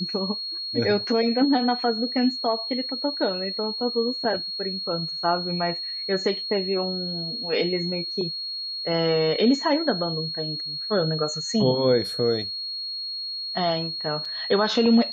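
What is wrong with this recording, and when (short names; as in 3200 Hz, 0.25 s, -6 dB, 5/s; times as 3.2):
tone 4300 Hz -29 dBFS
14.25 gap 4.4 ms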